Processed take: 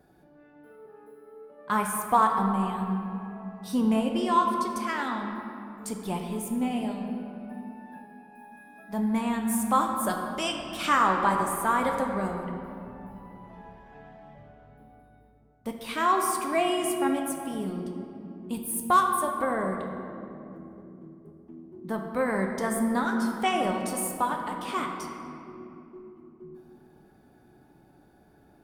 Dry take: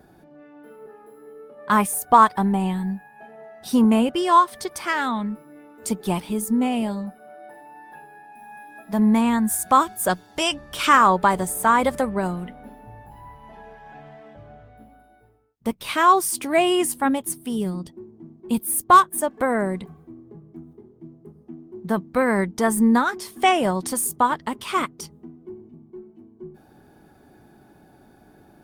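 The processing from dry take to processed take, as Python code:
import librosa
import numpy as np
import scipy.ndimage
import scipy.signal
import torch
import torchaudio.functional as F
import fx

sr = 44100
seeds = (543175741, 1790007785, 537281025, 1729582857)

y = fx.room_shoebox(x, sr, seeds[0], volume_m3=120.0, walls='hard', distance_m=0.31)
y = y * librosa.db_to_amplitude(-8.5)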